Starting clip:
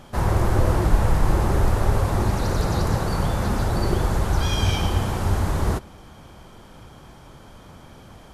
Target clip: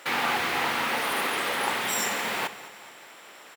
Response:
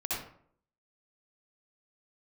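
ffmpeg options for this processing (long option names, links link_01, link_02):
-filter_complex "[0:a]highpass=290,asetrate=103194,aresample=44100,aecho=1:1:210|420|630|840|1050:0.141|0.0749|0.0397|0.021|0.0111,asplit=2[link_01][link_02];[1:a]atrim=start_sample=2205[link_03];[link_02][link_03]afir=irnorm=-1:irlink=0,volume=-20.5dB[link_04];[link_01][link_04]amix=inputs=2:normalize=0"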